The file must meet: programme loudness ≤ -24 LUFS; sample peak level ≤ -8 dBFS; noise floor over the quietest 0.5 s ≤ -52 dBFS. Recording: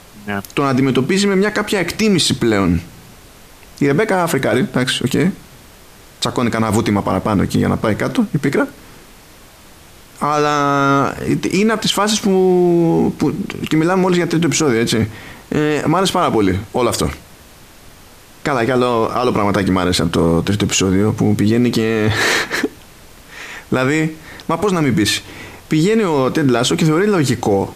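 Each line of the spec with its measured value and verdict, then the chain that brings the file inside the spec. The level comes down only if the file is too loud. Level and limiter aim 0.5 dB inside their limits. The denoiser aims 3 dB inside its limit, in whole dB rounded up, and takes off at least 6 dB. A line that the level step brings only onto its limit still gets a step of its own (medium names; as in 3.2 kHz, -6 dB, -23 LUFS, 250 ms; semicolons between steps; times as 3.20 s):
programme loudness -16.0 LUFS: fail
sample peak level -5.0 dBFS: fail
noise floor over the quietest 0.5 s -42 dBFS: fail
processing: noise reduction 6 dB, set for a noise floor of -42 dBFS; trim -8.5 dB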